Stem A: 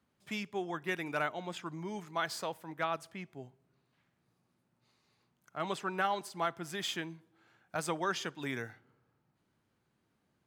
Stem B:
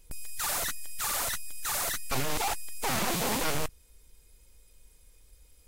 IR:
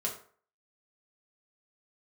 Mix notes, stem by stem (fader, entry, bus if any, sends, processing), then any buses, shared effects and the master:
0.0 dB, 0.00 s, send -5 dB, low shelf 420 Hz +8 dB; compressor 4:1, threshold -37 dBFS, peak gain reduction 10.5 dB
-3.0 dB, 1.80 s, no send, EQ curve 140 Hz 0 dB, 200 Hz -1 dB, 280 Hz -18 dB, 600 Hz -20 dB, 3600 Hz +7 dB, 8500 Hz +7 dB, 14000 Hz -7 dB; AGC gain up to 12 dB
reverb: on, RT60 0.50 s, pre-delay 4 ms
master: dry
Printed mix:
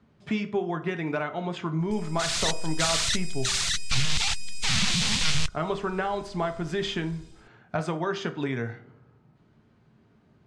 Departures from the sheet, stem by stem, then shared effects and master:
stem A 0.0 dB -> +7.0 dB; master: extra air absorption 110 m

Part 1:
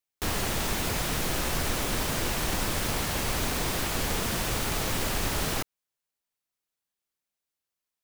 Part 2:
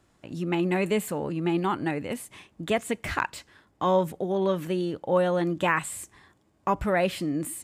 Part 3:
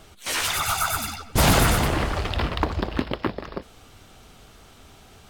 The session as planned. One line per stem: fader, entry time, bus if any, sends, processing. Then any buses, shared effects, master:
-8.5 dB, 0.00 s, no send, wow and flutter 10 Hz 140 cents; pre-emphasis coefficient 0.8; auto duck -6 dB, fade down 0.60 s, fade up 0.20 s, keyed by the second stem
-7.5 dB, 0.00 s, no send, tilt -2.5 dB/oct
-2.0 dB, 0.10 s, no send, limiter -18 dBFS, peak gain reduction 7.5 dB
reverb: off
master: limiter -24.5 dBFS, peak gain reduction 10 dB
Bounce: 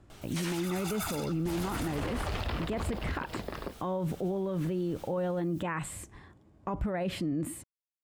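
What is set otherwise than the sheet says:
stem 1 -8.5 dB -> -20.5 dB; stem 2 -7.5 dB -> +1.0 dB

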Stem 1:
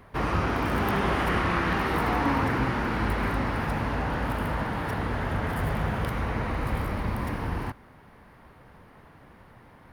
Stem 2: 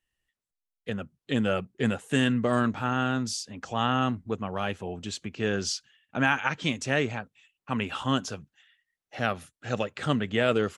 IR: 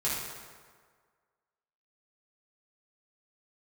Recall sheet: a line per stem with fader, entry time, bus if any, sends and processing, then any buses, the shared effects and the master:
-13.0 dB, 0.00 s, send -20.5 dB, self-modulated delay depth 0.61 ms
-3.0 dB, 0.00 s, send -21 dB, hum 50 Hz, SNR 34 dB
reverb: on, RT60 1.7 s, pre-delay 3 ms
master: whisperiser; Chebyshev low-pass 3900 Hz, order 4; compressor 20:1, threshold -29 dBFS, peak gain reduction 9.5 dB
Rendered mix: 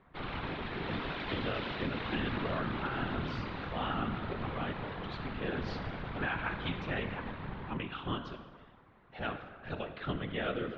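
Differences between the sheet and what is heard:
stem 2 -3.0 dB -> -10.5 dB; reverb return +9.5 dB

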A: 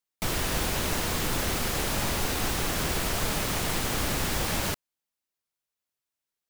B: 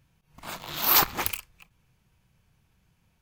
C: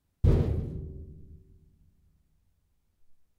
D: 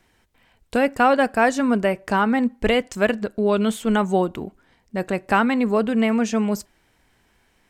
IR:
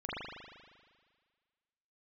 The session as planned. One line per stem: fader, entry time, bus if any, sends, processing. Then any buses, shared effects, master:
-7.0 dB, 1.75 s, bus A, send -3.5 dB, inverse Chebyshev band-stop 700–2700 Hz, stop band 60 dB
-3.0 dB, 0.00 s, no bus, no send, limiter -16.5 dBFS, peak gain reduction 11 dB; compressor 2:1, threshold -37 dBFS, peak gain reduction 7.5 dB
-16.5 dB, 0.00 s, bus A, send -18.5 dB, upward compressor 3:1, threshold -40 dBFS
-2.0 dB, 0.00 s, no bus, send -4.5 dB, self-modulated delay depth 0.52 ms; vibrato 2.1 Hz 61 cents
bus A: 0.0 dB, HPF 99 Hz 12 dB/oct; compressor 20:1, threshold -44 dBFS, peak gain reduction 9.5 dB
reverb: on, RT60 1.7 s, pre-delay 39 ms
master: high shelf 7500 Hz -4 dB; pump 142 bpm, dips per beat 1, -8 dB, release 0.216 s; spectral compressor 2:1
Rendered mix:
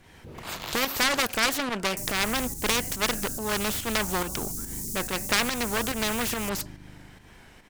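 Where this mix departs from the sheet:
stem C -16.5 dB -> -25.0 dB; stem D: send off

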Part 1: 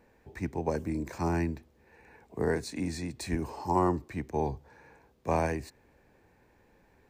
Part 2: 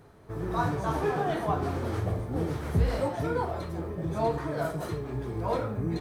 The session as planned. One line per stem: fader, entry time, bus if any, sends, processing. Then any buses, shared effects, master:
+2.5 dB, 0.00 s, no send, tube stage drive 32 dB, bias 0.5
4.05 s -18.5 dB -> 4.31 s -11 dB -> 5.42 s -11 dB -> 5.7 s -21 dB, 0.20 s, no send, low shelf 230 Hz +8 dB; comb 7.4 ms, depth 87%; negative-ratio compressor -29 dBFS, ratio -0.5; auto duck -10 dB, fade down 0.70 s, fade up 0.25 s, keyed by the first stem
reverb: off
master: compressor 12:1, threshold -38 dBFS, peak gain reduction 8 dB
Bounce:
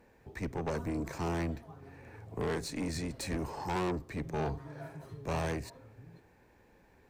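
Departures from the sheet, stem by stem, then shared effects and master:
stem 2: missing negative-ratio compressor -29 dBFS, ratio -0.5; master: missing compressor 12:1, threshold -38 dBFS, peak gain reduction 8 dB

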